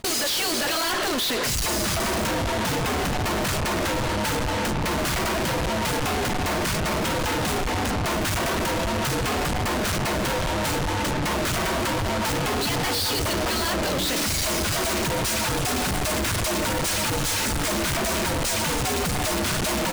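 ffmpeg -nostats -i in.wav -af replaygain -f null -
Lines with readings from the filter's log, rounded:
track_gain = +7.4 dB
track_peak = 0.044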